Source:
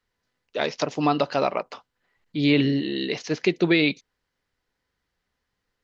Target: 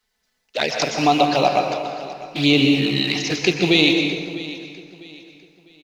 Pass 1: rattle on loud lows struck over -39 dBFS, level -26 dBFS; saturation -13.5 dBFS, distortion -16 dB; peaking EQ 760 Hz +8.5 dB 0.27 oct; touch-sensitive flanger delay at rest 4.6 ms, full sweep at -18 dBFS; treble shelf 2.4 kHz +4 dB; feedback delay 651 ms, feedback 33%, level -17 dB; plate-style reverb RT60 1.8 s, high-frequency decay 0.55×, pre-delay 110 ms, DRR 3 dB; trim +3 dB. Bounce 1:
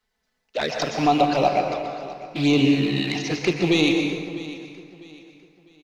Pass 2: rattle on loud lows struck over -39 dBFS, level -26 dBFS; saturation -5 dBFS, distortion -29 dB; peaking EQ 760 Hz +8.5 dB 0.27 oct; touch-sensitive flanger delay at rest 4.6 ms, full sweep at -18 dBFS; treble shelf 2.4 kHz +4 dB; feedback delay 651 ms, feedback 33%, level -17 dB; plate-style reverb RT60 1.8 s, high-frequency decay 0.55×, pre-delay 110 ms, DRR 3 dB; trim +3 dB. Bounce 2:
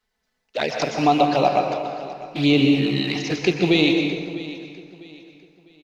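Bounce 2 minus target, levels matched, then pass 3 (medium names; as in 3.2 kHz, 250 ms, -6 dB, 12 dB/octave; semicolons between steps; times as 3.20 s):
4 kHz band -4.0 dB
rattle on loud lows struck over -39 dBFS, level -26 dBFS; saturation -5 dBFS, distortion -29 dB; peaking EQ 760 Hz +8.5 dB 0.27 oct; touch-sensitive flanger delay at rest 4.6 ms, full sweep at -18 dBFS; treble shelf 2.4 kHz +12.5 dB; feedback delay 651 ms, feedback 33%, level -17 dB; plate-style reverb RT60 1.8 s, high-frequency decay 0.55×, pre-delay 110 ms, DRR 3 dB; trim +3 dB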